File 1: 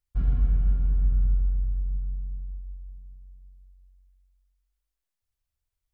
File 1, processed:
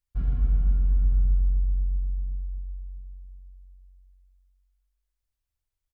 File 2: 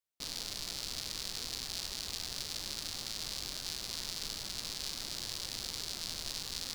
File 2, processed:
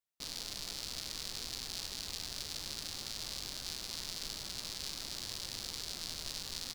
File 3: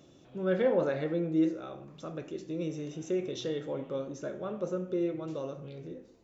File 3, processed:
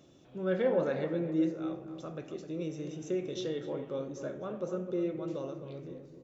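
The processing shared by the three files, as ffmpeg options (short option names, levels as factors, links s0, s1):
-filter_complex "[0:a]asplit=2[s0][s1];[s1]adelay=259,lowpass=f=1300:p=1,volume=0.376,asplit=2[s2][s3];[s3]adelay=259,lowpass=f=1300:p=1,volume=0.39,asplit=2[s4][s5];[s5]adelay=259,lowpass=f=1300:p=1,volume=0.39,asplit=2[s6][s7];[s7]adelay=259,lowpass=f=1300:p=1,volume=0.39[s8];[s0][s2][s4][s6][s8]amix=inputs=5:normalize=0,volume=0.794"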